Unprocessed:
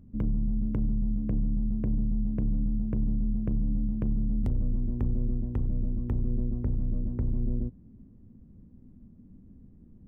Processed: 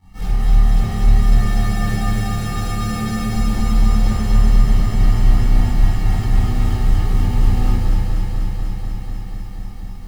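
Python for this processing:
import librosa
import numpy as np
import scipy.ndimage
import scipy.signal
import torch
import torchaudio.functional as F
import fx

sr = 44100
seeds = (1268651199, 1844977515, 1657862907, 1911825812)

y = fx.highpass(x, sr, hz=140.0, slope=12, at=(1.14, 3.31))
y = fx.rider(y, sr, range_db=10, speed_s=0.5)
y = fx.clip_asym(y, sr, top_db=-31.0, bottom_db=-23.0)
y = fx.sample_hold(y, sr, seeds[0], rate_hz=1000.0, jitter_pct=0)
y = fx.chorus_voices(y, sr, voices=6, hz=0.52, base_ms=21, depth_ms=1.5, mix_pct=60)
y = y + 10.0 ** (-3.5 / 20.0) * np.pad(y, (int(235 * sr / 1000.0), 0))[:len(y)]
y = fx.room_shoebox(y, sr, seeds[1], volume_m3=470.0, walls='mixed', distance_m=4.2)
y = fx.echo_crushed(y, sr, ms=245, feedback_pct=80, bits=9, wet_db=-4)
y = y * 10.0 ** (-1.5 / 20.0)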